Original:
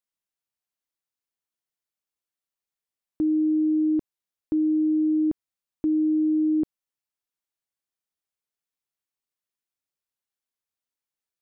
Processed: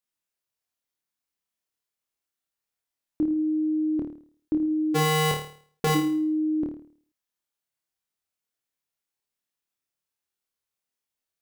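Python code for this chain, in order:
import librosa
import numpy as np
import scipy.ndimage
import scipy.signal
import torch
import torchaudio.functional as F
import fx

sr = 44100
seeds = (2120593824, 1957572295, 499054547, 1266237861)

y = fx.cycle_switch(x, sr, every=2, mode='inverted', at=(4.94, 5.94), fade=0.02)
y = fx.room_flutter(y, sr, wall_m=4.6, rt60_s=0.5)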